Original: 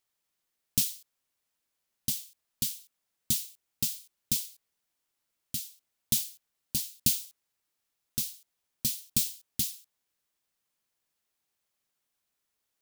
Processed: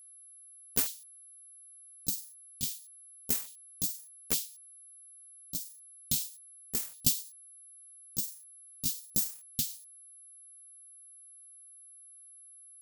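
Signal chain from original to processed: sawtooth pitch modulation +11.5 st, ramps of 867 ms; whistle 11 kHz -51 dBFS; peaking EQ 340 Hz -14 dB 0.26 oct

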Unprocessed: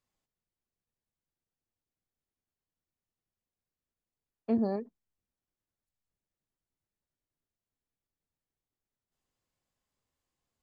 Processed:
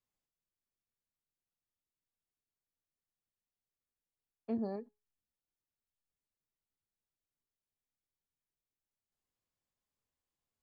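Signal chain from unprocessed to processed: feedback comb 420 Hz, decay 0.27 s, harmonics all, mix 40%; trim -3.5 dB

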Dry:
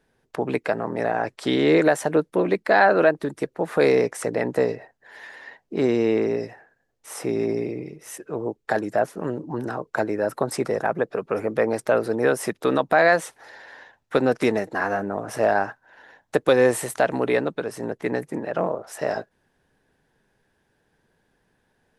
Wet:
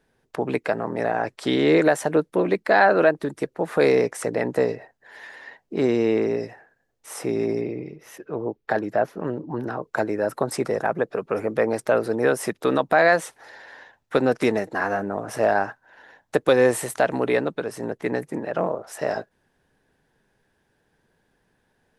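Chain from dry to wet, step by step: 7.61–9.83 s: peaking EQ 8.6 kHz -14.5 dB 0.9 oct

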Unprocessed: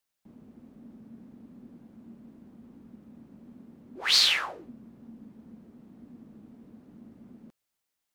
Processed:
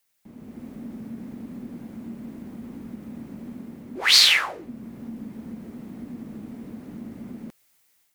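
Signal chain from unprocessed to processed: treble shelf 6.7 kHz +7.5 dB; level rider gain up to 8 dB; peaking EQ 2.1 kHz +5 dB 0.52 oct; in parallel at +2.5 dB: compression, threshold -39 dBFS, peak gain reduction 26 dB; on the sum: trim -2 dB

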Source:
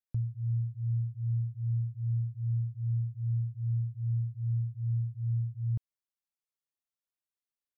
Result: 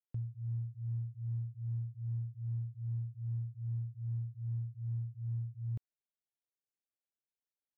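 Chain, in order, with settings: local Wiener filter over 41 samples; bass shelf 270 Hz -11.5 dB; trim +3 dB

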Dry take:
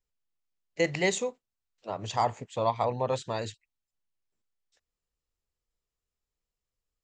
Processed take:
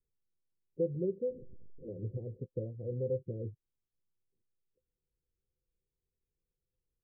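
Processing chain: 1.28–2.37 s: one-bit delta coder 64 kbps, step -39 dBFS; compression 2:1, threshold -37 dBFS, peak gain reduction 9.5 dB; rippled Chebyshev low-pass 530 Hz, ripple 6 dB; trim +5.5 dB

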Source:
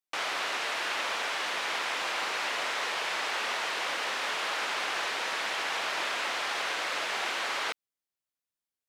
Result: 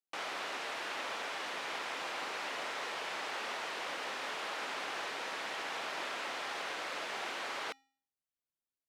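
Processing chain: tilt shelf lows +3.5 dB, about 730 Hz; feedback comb 270 Hz, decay 0.49 s, harmonics odd, mix 50%

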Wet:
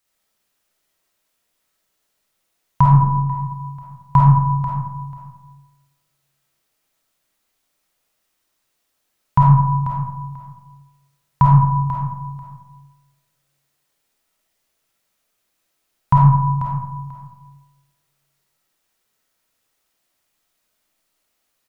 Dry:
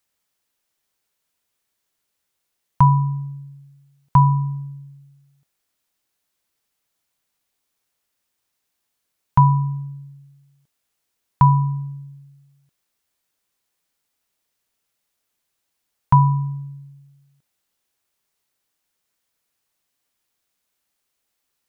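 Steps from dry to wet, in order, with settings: feedback delay 490 ms, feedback 18%, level -10.5 dB; 2.95–3.38 s: expander -22 dBFS; algorithmic reverb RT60 1 s, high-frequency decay 0.4×, pre-delay 10 ms, DRR -4.5 dB

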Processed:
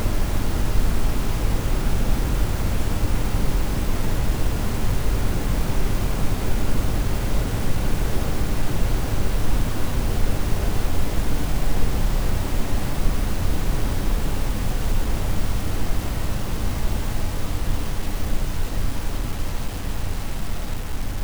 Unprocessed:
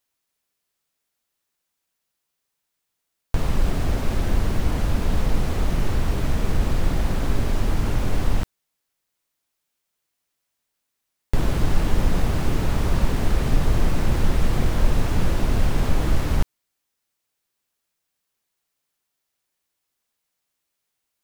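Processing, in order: Paulstretch 27×, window 1.00 s, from 7.78 s; bit crusher 6-bit

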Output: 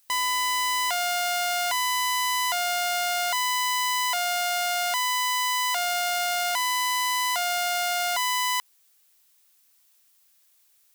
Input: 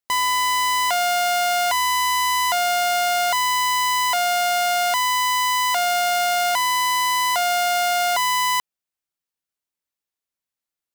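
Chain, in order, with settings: tilt shelf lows -4.5 dB, about 770 Hz; added noise blue -55 dBFS; trim -7.5 dB

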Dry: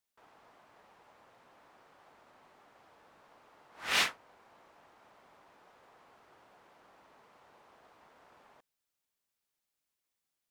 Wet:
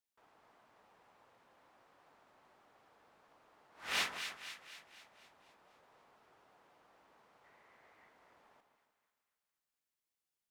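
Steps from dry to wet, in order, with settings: 7.44–8.10 s: peaking EQ 2 kHz +12.5 dB 0.4 oct; two-band feedback delay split 1.3 kHz, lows 153 ms, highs 248 ms, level -8 dB; trim -6.5 dB

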